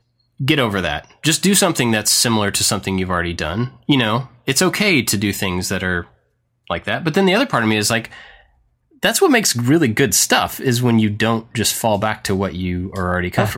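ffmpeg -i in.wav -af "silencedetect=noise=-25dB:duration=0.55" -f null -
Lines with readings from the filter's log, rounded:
silence_start: 6.02
silence_end: 6.71 | silence_duration: 0.69
silence_start: 8.05
silence_end: 9.03 | silence_duration: 0.98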